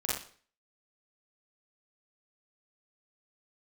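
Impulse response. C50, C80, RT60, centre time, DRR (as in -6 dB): 0.5 dB, 7.0 dB, not exponential, 53 ms, -7.0 dB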